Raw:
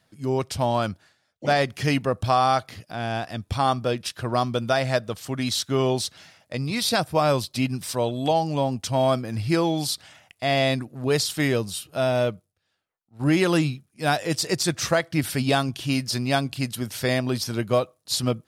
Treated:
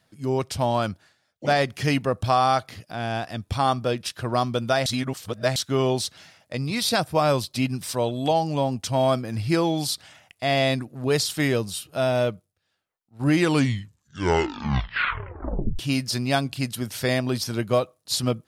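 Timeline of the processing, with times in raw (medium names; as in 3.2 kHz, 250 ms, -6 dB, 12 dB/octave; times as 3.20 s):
4.86–5.56 s: reverse
13.25 s: tape stop 2.54 s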